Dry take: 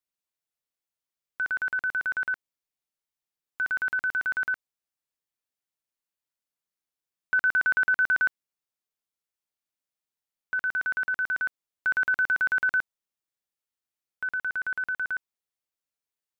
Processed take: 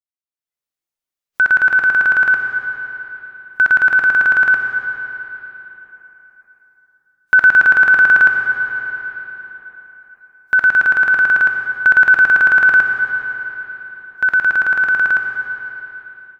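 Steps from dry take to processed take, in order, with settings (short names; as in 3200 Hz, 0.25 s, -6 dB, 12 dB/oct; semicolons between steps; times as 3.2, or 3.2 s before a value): digital reverb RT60 3.7 s, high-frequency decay 0.85×, pre-delay 20 ms, DRR 4.5 dB; spectral noise reduction 15 dB; AGC gain up to 16 dB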